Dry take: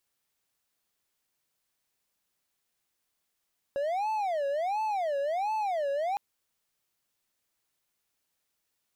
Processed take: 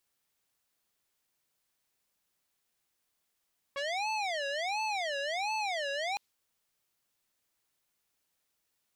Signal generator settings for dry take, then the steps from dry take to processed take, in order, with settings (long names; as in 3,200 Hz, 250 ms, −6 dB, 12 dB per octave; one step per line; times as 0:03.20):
siren wail 555–875 Hz 1.4 per second triangle −25 dBFS 2.41 s
dynamic equaliser 4,100 Hz, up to +7 dB, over −56 dBFS, Q 0.8
saturating transformer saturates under 2,400 Hz